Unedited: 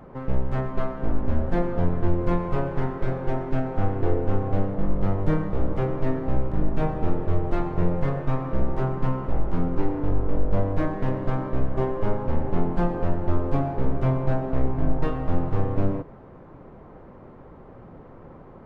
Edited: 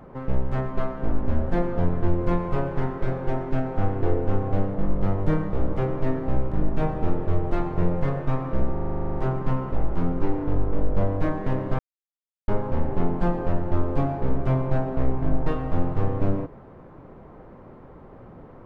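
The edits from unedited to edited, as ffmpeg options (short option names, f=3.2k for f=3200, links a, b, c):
-filter_complex "[0:a]asplit=14[a][b][c][d][e][f][g][h][i][j][k][l][m][n];[a]atrim=end=8.762[o];[b]atrim=start=8.718:end=8.762[p];[c]atrim=start=8.718:end=8.762[q];[d]atrim=start=8.718:end=8.762[r];[e]atrim=start=8.718:end=8.762[s];[f]atrim=start=8.718:end=8.762[t];[g]atrim=start=8.718:end=8.762[u];[h]atrim=start=8.718:end=8.762[v];[i]atrim=start=8.718:end=8.762[w];[j]atrim=start=8.718:end=8.762[x];[k]atrim=start=8.718:end=8.762[y];[l]atrim=start=8.718:end=11.35,asetpts=PTS-STARTPTS,afade=t=out:st=2.628:d=0.004:c=hsin[z];[m]atrim=start=11.35:end=12.04,asetpts=PTS-STARTPTS,volume=0[aa];[n]atrim=start=12.04,asetpts=PTS-STARTPTS,afade=t=in:d=0.004:c=hsin[ab];[o][p]acrossfade=d=0.004:c1=hsin:c2=hsin[ac];[ac][q]acrossfade=d=0.004:c1=hsin:c2=hsin[ad];[ad][r]acrossfade=d=0.004:c1=hsin:c2=hsin[ae];[ae][s]acrossfade=d=0.004:c1=hsin:c2=hsin[af];[af][t]acrossfade=d=0.004:c1=hsin:c2=hsin[ag];[ag][u]acrossfade=d=0.004:c1=hsin:c2=hsin[ah];[ah][v]acrossfade=d=0.004:c1=hsin:c2=hsin[ai];[ai][w]acrossfade=d=0.004:c1=hsin:c2=hsin[aj];[aj][x]acrossfade=d=0.004:c1=hsin:c2=hsin[ak];[ak][y]acrossfade=d=0.004:c1=hsin:c2=hsin[al];[z][aa][ab]concat=n=3:v=0:a=1[am];[al][am]acrossfade=d=0.004:c1=hsin:c2=hsin"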